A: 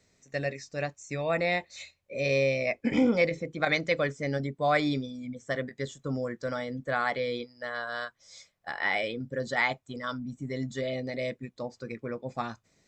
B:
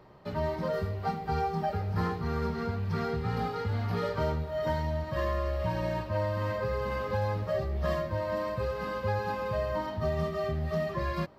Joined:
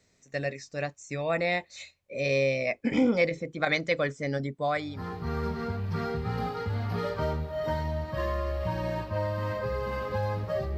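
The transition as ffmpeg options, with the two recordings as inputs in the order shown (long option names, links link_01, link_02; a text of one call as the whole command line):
ffmpeg -i cue0.wav -i cue1.wav -filter_complex "[0:a]apad=whole_dur=10.77,atrim=end=10.77,atrim=end=5.28,asetpts=PTS-STARTPTS[link_01];[1:a]atrim=start=1.57:end=7.76,asetpts=PTS-STARTPTS[link_02];[link_01][link_02]acrossfade=duration=0.7:curve1=qua:curve2=qua" out.wav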